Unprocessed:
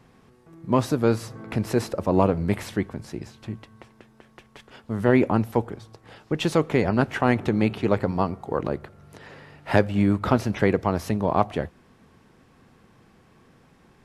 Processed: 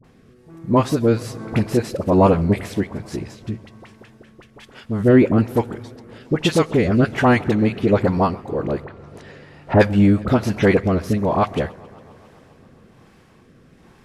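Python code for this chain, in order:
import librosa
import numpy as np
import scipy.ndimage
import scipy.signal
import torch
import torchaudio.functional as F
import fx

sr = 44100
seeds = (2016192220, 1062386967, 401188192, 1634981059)

y = fx.rotary(x, sr, hz=1.2)
y = fx.dispersion(y, sr, late='highs', ms=43.0, hz=870.0)
y = fx.env_lowpass_down(y, sr, base_hz=1000.0, full_db=-28.0, at=(8.84, 9.79), fade=0.02)
y = fx.echo_warbled(y, sr, ms=136, feedback_pct=76, rate_hz=2.8, cents=128, wet_db=-23.5)
y = y * 10.0 ** (7.0 / 20.0)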